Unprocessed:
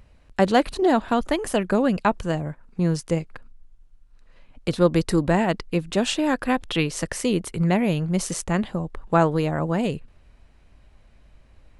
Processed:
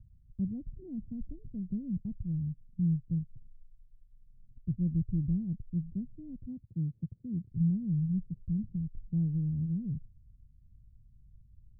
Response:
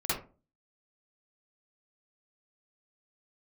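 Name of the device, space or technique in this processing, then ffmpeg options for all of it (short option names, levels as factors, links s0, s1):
the neighbour's flat through the wall: -filter_complex "[0:a]lowpass=f=180:w=0.5412,lowpass=f=180:w=1.3066,equalizer=f=110:t=o:w=0.8:g=7,asettb=1/sr,asplit=3[s0][s1][s2];[s0]atrim=end=6.464[s3];[s1]atrim=start=6.46:end=7.52,asetpts=PTS-STARTPTS,afade=t=in:d=0.004:c=qsin,afade=t=out:st=1.056:d=0.004:c=qsin,highpass=94[s4];[s2]atrim=start=7.516[s5];[s3][s4]acrossfade=d=0.004:c1=hsin:c2=qsin[s6];[s6][s5]acrossfade=d=0.004:c1=qsin:c2=hsin,volume=0.531"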